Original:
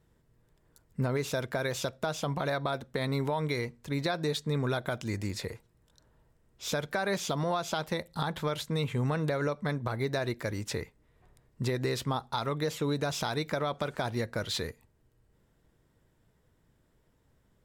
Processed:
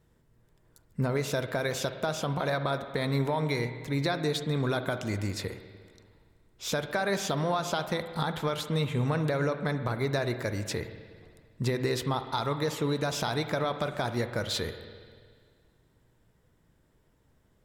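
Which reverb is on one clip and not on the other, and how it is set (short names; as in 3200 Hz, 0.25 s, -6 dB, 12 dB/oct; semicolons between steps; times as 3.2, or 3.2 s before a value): spring tank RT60 1.9 s, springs 50/58 ms, chirp 20 ms, DRR 9 dB; gain +1.5 dB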